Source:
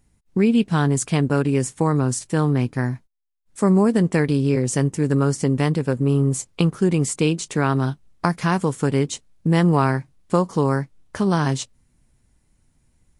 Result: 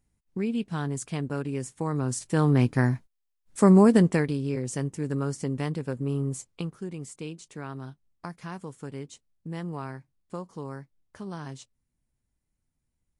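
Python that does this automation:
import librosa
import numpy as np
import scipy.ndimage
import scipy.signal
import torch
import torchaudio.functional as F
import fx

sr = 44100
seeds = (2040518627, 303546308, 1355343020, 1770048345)

y = fx.gain(x, sr, db=fx.line((1.75, -11.5), (2.64, 0.0), (3.97, 0.0), (4.38, -10.0), (6.31, -10.0), (6.9, -18.0)))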